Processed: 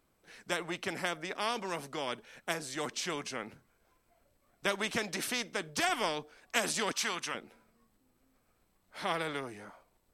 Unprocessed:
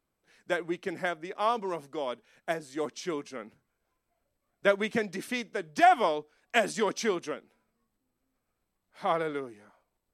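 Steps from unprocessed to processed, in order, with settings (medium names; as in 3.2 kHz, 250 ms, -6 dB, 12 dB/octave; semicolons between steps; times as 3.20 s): 6.92–7.35 s: resonant low shelf 760 Hz -10.5 dB, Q 1.5; spectrum-flattening compressor 2:1; trim -4.5 dB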